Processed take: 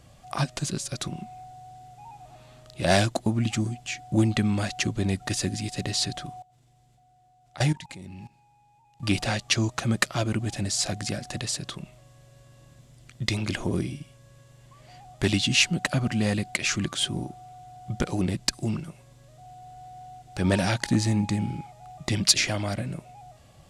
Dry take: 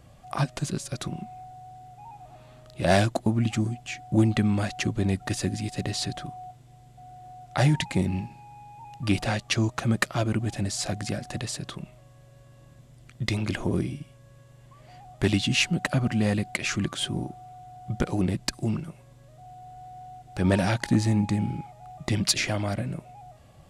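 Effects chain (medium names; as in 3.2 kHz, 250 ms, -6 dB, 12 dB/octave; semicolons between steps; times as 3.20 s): peaking EQ 5.8 kHz +6 dB 2.3 oct; 6.42–9.03 s: level held to a coarse grid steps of 20 dB; trim -1 dB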